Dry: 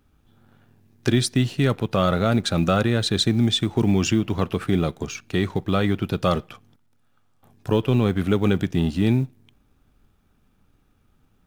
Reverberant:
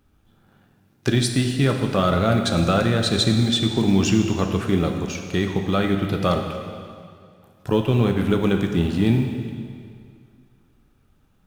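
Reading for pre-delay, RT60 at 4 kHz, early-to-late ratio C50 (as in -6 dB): 6 ms, 2.0 s, 5.5 dB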